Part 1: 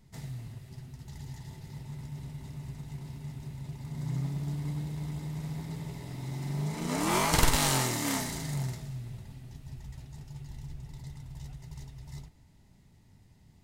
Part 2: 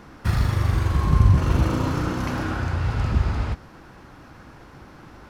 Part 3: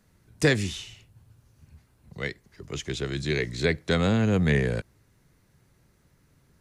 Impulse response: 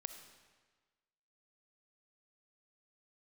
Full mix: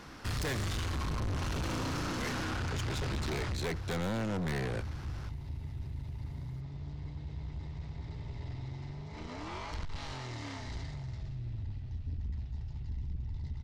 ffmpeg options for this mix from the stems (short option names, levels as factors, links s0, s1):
-filter_complex "[0:a]lowpass=f=5100:w=0.5412,lowpass=f=5100:w=1.3066,acompressor=threshold=0.0141:ratio=5,lowshelf=f=120:t=q:w=3:g=10,adelay=2400,volume=0.891[s0];[1:a]equalizer=f=5000:w=0.47:g=9.5,volume=0.562[s1];[2:a]volume=0.891[s2];[s0][s1][s2]amix=inputs=3:normalize=0,aeval=exprs='(tanh(39.8*val(0)+0.2)-tanh(0.2))/39.8':c=same"